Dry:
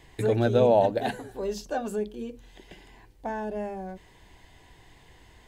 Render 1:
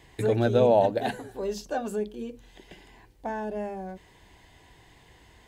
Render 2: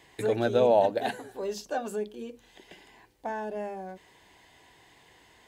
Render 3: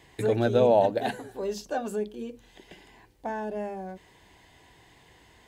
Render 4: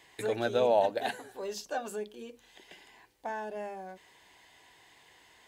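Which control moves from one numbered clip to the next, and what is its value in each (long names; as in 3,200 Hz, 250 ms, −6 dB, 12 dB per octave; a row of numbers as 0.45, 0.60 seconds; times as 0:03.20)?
high-pass filter, corner frequency: 40, 330, 120, 850 Hertz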